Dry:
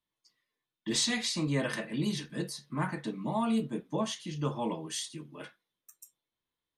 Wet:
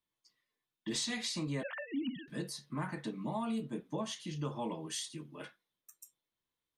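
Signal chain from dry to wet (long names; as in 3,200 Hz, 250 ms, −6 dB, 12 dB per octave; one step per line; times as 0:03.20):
0:01.63–0:02.28: three sine waves on the formant tracks
downward compressor 2.5 to 1, threshold −33 dBFS, peak gain reduction 6 dB
level −2 dB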